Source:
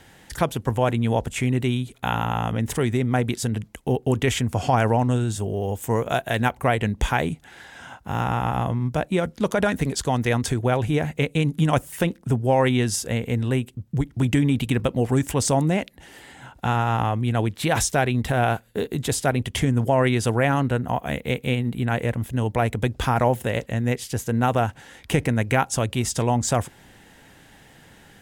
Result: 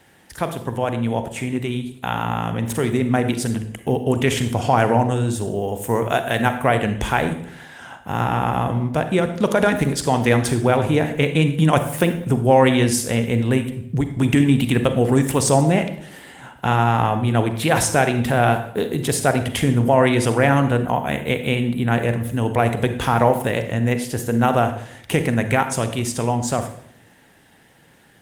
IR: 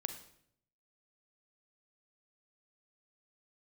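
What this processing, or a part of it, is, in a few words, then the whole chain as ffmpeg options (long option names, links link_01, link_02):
far-field microphone of a smart speaker: -filter_complex "[0:a]asplit=3[link_01][link_02][link_03];[link_01]afade=type=out:start_time=20.92:duration=0.02[link_04];[link_02]equalizer=frequency=4900:width_type=o:width=0.3:gain=-4,afade=type=in:start_time=20.92:duration=0.02,afade=type=out:start_time=21.5:duration=0.02[link_05];[link_03]afade=type=in:start_time=21.5:duration=0.02[link_06];[link_04][link_05][link_06]amix=inputs=3:normalize=0[link_07];[1:a]atrim=start_sample=2205[link_08];[link_07][link_08]afir=irnorm=-1:irlink=0,highpass=frequency=130:poles=1,dynaudnorm=framelen=160:gausssize=31:maxgain=13dB" -ar 48000 -c:a libopus -b:a 32k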